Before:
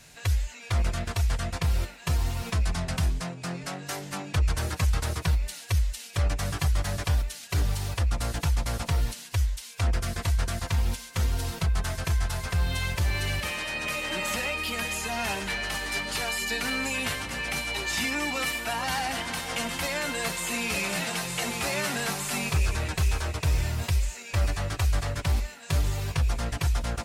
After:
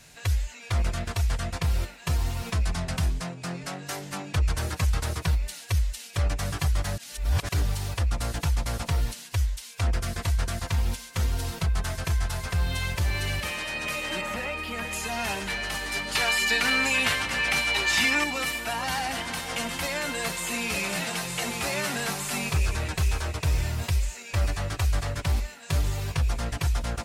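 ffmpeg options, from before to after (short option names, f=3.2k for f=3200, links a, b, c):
-filter_complex "[0:a]asettb=1/sr,asplit=3[a][b][c];[a]atrim=end=14.214[d];[b]atrim=start=14.21:end=14.93,asetpts=PTS-STARTPTS,afade=t=in:d=0.004:c=qsin,afade=t=out:st=0.716:d=0.004:c=qsin,acrossover=split=2500[e][f];[f]acompressor=threshold=-42dB:ratio=4:attack=1:release=60[g];[e][g]amix=inputs=2:normalize=0[h];[c]atrim=start=14.926[i];[d][h]acrossfade=d=0.004:c1=hsin:c2=qsin[j];[j][i]acrossfade=d=0.004:c1=qsin:c2=hsin,asettb=1/sr,asplit=3[k][l][m];[k]atrim=end=16.154[n];[l]atrim=start=16.15:end=18.24,asetpts=PTS-STARTPTS,afade=t=in:d=0.004:c=qsin,afade=t=out:st=2.086:d=0.004:c=qsin,equalizer=f=2.1k:w=0.34:g=7[o];[m]atrim=start=18.236[p];[n][o]acrossfade=d=0.004:c1=hsin:c2=qsin[q];[q][p]acrossfade=d=0.004:c1=qsin:c2=hsin,asplit=3[r][s][t];[r]atrim=end=6.982[u];[s]atrim=start=6.978:end=7.492,asetpts=PTS-STARTPTS,areverse[v];[t]atrim=start=7.488[w];[u][v]acrossfade=d=0.004:c1=hsin:c2=hsin[x];[x][w]acrossfade=d=0.004:c1=hsin:c2=hsin"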